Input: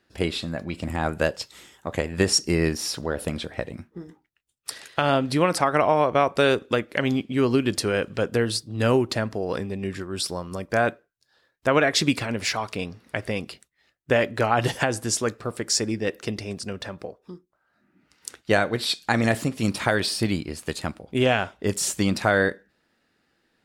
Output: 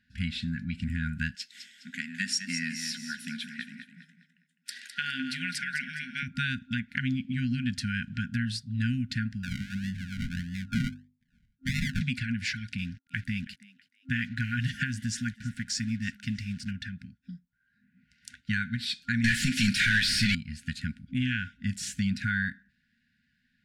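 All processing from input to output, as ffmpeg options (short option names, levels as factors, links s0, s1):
-filter_complex "[0:a]asettb=1/sr,asplit=3[s0][s1][s2];[s0]atrim=end=1.354[s3];[s1]atrim=start=1.35:end=6.23,asetpts=PTS-STARTPTS,afade=t=in:d=0.004:c=qsin,afade=t=out:st=4.876:d=0.004:c=qsin,highpass=f=250:w=0.5412,highpass=f=250:w=1.3066,highshelf=f=5100:g=5,aecho=1:1:206|412|618|824:0.355|0.124|0.0435|0.0152,atrim=end_sample=215208[s4];[s2]atrim=start=6.226[s5];[s3][s4]acrossfade=d=0.004:c1=hsin:c2=qsin[s6];[s6][s5]acrossfade=d=0.004:c1=qsin:c2=hsin,asettb=1/sr,asplit=3[s7][s8][s9];[s7]atrim=end=9.434[s10];[s8]atrim=start=9.43:end=12.01,asetpts=PTS-STARTPTS,afade=t=in:d=0.004:c=qsin,afade=t=out:st=2.576:d=0.004:c=qsin,acrusher=samples=40:mix=1:aa=0.000001:lfo=1:lforange=24:lforate=1.6,bandreject=f=50:t=h:w=6,bandreject=f=100:t=h:w=6,bandreject=f=150:t=h:w=6,bandreject=f=200:t=h:w=6,bandreject=f=250:t=h:w=6,bandreject=f=300:t=h:w=6,bandreject=f=350:t=h:w=6[s11];[s9]atrim=start=12.006[s12];[s10][s11]acrossfade=d=0.004:c1=hsin:c2=qsin[s13];[s13][s12]acrossfade=d=0.004:c1=qsin:c2=hsin,asettb=1/sr,asplit=3[s14][s15][s16];[s14]atrim=end=12.784[s17];[s15]atrim=start=12.78:end=16.71,asetpts=PTS-STARTPTS,afade=t=in:d=0.004:c=qsin,afade=t=out:st=3.926:d=0.004:c=qsin,acrusher=bits=6:mix=0:aa=0.5,asplit=4[s18][s19][s20][s21];[s19]adelay=324,afreqshift=98,volume=0.0891[s22];[s20]adelay=648,afreqshift=196,volume=0.0302[s23];[s21]adelay=972,afreqshift=294,volume=0.0104[s24];[s18][s22][s23][s24]amix=inputs=4:normalize=0,atrim=end_sample=173313[s25];[s16]atrim=start=16.706[s26];[s17][s25]acrossfade=d=0.004:c1=hsin:c2=qsin[s27];[s27][s26]acrossfade=d=0.004:c1=qsin:c2=hsin,asettb=1/sr,asplit=3[s28][s29][s30];[s28]atrim=end=19.244[s31];[s29]atrim=start=19.24:end=20.35,asetpts=PTS-STARTPTS,afade=t=in:d=0.004:c=qsin,afade=t=out:st=1.106:d=0.004:c=qsin,highshelf=f=4200:g=12,asplit=2[s32][s33];[s33]highpass=f=720:p=1,volume=31.6,asoftclip=type=tanh:threshold=0.631[s34];[s32][s34]amix=inputs=2:normalize=0,lowpass=f=5000:p=1,volume=0.501[s35];[s30]atrim=start=20.346[s36];[s31][s35]acrossfade=d=0.004:c1=hsin:c2=qsin[s37];[s37][s36]acrossfade=d=0.004:c1=qsin:c2=hsin,afftfilt=real='re*(1-between(b*sr/4096,260,1400))':imag='im*(1-between(b*sr/4096,260,1400))':win_size=4096:overlap=0.75,aemphasis=mode=reproduction:type=75fm,acompressor=threshold=0.0398:ratio=2"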